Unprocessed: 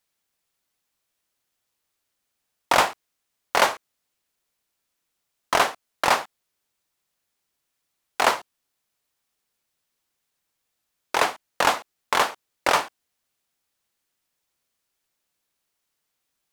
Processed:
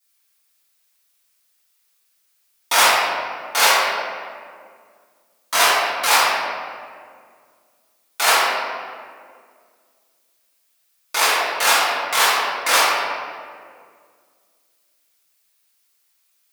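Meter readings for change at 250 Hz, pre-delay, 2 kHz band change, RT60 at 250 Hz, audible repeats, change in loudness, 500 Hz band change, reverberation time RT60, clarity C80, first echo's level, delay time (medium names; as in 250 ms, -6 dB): -2.0 dB, 3 ms, +8.0 dB, 2.5 s, no echo, +6.0 dB, +2.5 dB, 2.0 s, -0.5 dB, no echo, no echo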